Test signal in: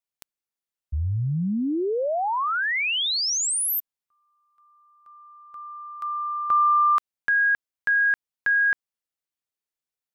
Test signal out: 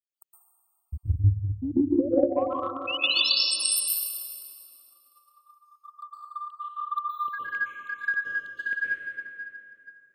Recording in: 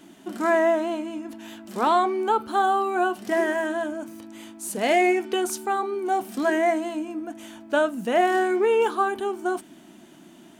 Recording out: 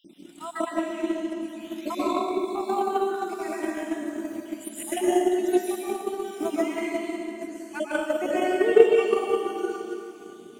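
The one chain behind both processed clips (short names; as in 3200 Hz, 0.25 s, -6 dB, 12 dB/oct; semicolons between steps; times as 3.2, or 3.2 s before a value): random spectral dropouts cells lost 73%; low shelf 100 Hz -11.5 dB; plate-style reverb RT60 2.8 s, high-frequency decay 0.7×, pre-delay 0.105 s, DRR -9.5 dB; transient shaper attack +8 dB, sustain -1 dB; band shelf 1100 Hz -10.5 dB; gain -4.5 dB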